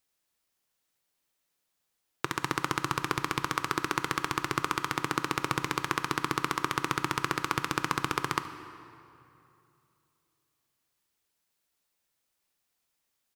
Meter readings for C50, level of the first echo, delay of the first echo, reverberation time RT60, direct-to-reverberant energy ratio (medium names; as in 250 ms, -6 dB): 11.0 dB, -20.0 dB, 73 ms, 2.8 s, 10.0 dB